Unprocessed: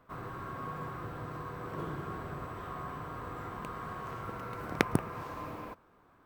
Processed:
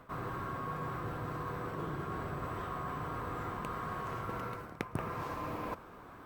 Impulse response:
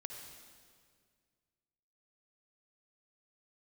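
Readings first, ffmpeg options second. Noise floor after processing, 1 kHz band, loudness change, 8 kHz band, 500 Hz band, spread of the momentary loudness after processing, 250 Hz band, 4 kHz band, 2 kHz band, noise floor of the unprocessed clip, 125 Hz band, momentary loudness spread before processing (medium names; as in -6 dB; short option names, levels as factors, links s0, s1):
-52 dBFS, +1.0 dB, -0.5 dB, -5.5 dB, -0.5 dB, 2 LU, -2.0 dB, -4.5 dB, -2.5 dB, -64 dBFS, 0.0 dB, 9 LU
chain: -af "areverse,acompressor=threshold=0.00355:ratio=5,areverse,volume=3.98" -ar 48000 -c:a libopus -b:a 48k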